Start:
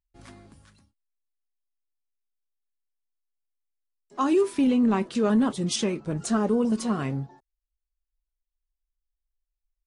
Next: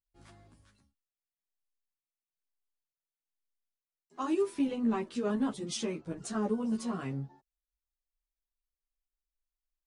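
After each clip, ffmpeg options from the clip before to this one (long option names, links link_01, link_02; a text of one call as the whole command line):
ffmpeg -i in.wav -filter_complex "[0:a]asplit=2[link_01][link_02];[link_02]adelay=11.9,afreqshift=1.1[link_03];[link_01][link_03]amix=inputs=2:normalize=1,volume=-5.5dB" out.wav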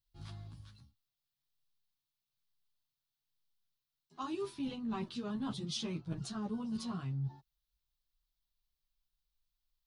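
ffmpeg -i in.wav -af "equalizer=frequency=125:width_type=o:width=1:gain=11,equalizer=frequency=250:width_type=o:width=1:gain=-5,equalizer=frequency=500:width_type=o:width=1:gain=-11,equalizer=frequency=2000:width_type=o:width=1:gain=-8,equalizer=frequency=4000:width_type=o:width=1:gain=8,equalizer=frequency=8000:width_type=o:width=1:gain=-10,areverse,acompressor=threshold=-42dB:ratio=6,areverse,volume=6dB" out.wav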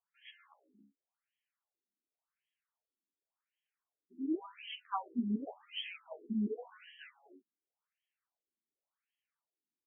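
ffmpeg -i in.wav -af "afftfilt=real='re*between(b*sr/1024,270*pow(2400/270,0.5+0.5*sin(2*PI*0.9*pts/sr))/1.41,270*pow(2400/270,0.5+0.5*sin(2*PI*0.9*pts/sr))*1.41)':imag='im*between(b*sr/1024,270*pow(2400/270,0.5+0.5*sin(2*PI*0.9*pts/sr))/1.41,270*pow(2400/270,0.5+0.5*sin(2*PI*0.9*pts/sr))*1.41)':win_size=1024:overlap=0.75,volume=8.5dB" out.wav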